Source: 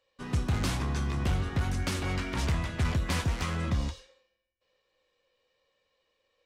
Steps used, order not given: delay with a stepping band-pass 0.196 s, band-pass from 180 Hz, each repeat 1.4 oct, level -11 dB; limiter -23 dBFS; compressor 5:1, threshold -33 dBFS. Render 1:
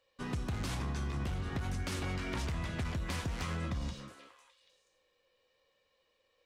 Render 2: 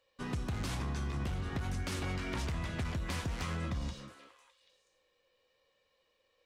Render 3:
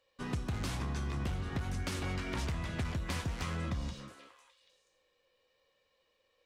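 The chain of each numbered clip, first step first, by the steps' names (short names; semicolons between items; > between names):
delay with a stepping band-pass > limiter > compressor; limiter > delay with a stepping band-pass > compressor; delay with a stepping band-pass > compressor > limiter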